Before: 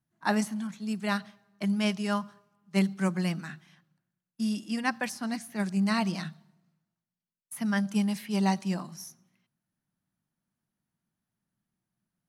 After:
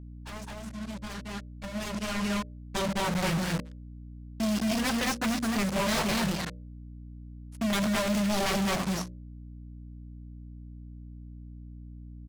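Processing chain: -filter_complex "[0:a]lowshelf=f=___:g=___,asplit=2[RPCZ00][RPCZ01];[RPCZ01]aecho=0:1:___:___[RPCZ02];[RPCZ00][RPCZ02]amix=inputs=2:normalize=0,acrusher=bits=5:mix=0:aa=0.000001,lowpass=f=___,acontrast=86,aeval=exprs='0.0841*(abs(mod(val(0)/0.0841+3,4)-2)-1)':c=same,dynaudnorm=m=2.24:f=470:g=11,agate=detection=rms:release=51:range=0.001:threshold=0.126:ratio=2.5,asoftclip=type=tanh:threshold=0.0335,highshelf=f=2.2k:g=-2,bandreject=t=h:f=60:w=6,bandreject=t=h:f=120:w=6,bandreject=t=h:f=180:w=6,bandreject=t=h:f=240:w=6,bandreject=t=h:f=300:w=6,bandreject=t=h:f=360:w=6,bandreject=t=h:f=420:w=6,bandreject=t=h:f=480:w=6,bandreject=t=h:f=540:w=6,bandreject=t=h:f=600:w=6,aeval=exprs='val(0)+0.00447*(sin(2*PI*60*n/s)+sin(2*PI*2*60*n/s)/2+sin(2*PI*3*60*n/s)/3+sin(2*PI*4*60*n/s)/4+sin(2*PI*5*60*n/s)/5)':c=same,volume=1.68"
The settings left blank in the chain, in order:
68, 5.5, 211, 0.631, 8.1k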